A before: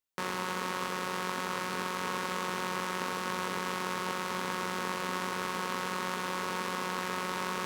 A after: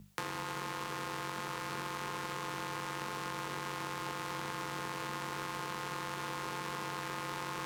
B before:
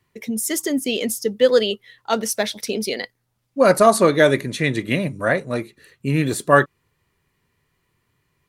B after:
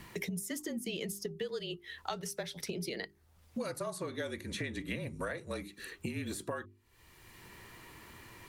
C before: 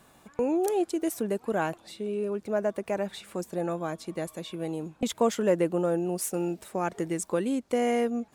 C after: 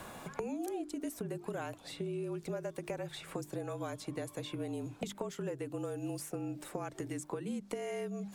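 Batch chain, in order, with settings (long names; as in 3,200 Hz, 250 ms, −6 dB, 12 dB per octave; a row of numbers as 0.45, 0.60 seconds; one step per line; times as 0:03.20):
frequency shifter −40 Hz
downward compressor 12 to 1, threshold −32 dBFS
hum with harmonics 50 Hz, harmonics 4, −62 dBFS
mains-hum notches 50/100/150/200/250/300/350/400 Hz
multiband upward and downward compressor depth 70%
level −2.5 dB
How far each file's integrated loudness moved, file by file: −5.0, −20.0, −11.0 LU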